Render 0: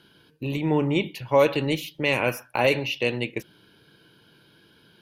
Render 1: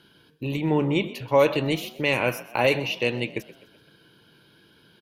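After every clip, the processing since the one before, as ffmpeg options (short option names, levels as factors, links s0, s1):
-filter_complex "[0:a]asplit=5[s0][s1][s2][s3][s4];[s1]adelay=127,afreqshift=48,volume=0.126[s5];[s2]adelay=254,afreqshift=96,volume=0.0569[s6];[s3]adelay=381,afreqshift=144,volume=0.0254[s7];[s4]adelay=508,afreqshift=192,volume=0.0115[s8];[s0][s5][s6][s7][s8]amix=inputs=5:normalize=0"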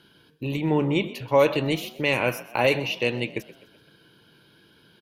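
-af anull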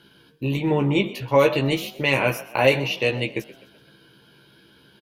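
-filter_complex "[0:a]asplit=2[s0][s1];[s1]adelay=15,volume=0.596[s2];[s0][s2]amix=inputs=2:normalize=0,volume=1.19"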